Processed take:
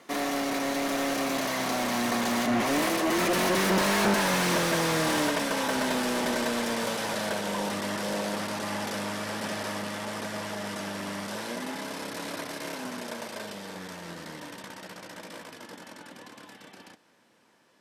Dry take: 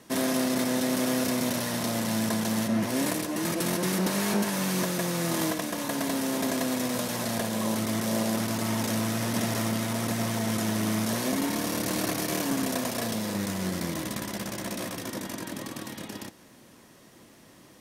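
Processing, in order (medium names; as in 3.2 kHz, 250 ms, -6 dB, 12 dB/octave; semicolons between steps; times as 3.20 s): Doppler pass-by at 3.94 s, 29 m/s, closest 27 m; overdrive pedal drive 24 dB, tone 2.6 kHz, clips at -15.5 dBFS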